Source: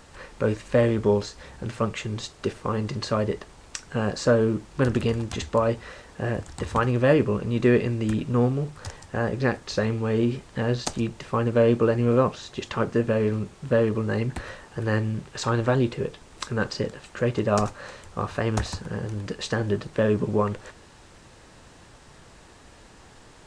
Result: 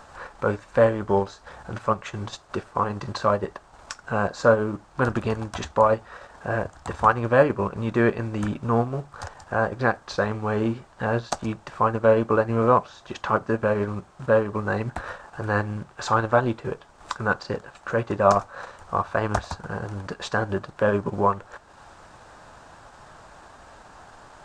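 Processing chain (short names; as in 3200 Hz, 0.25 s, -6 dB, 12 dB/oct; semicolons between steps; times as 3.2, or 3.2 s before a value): band shelf 1000 Hz +10 dB; transient shaper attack -2 dB, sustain -7 dB; speed mistake 25 fps video run at 24 fps; gain -1.5 dB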